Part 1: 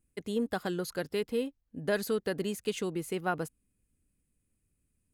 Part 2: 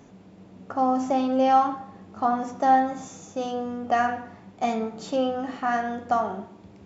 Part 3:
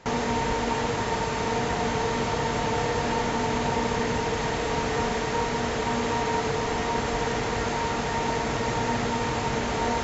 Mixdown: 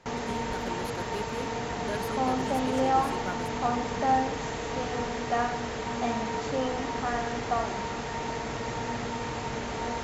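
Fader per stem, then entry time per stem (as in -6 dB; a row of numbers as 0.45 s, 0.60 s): -6.0 dB, -6.0 dB, -6.5 dB; 0.00 s, 1.40 s, 0.00 s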